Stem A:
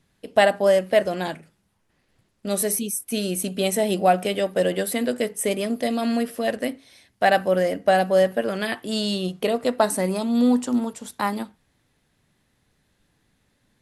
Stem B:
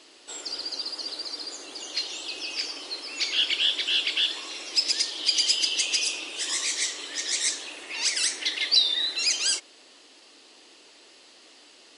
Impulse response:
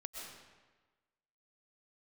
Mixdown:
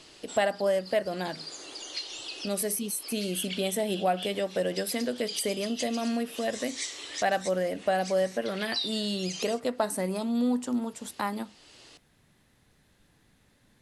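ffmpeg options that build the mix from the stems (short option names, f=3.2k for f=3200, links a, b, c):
-filter_complex "[0:a]volume=2.5dB,asplit=2[a][b];[1:a]volume=0dB[c];[b]apad=whole_len=528001[d];[c][d]sidechaincompress=threshold=-29dB:ratio=8:attack=26:release=110[e];[a][e]amix=inputs=2:normalize=0,acompressor=threshold=-43dB:ratio=1.5"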